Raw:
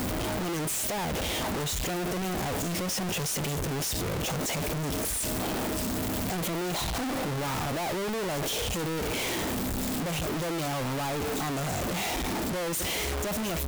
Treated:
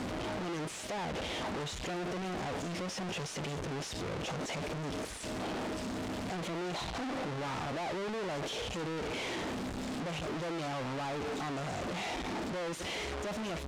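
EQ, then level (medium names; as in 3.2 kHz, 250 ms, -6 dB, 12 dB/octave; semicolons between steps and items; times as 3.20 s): distance through air 75 m; bass shelf 120 Hz -8 dB; treble shelf 8.7 kHz -5 dB; -4.5 dB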